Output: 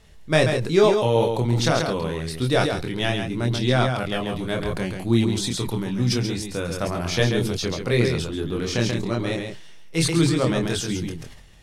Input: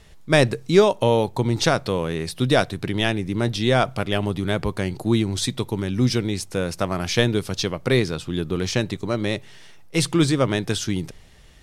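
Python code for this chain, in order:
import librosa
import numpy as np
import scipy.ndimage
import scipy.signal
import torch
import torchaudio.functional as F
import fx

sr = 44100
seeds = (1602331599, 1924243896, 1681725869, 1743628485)

p1 = fx.chorus_voices(x, sr, voices=2, hz=0.28, base_ms=25, depth_ms=1.3, mix_pct=40)
p2 = p1 + fx.echo_single(p1, sr, ms=136, db=-6.5, dry=0)
y = fx.sustainer(p2, sr, db_per_s=52.0)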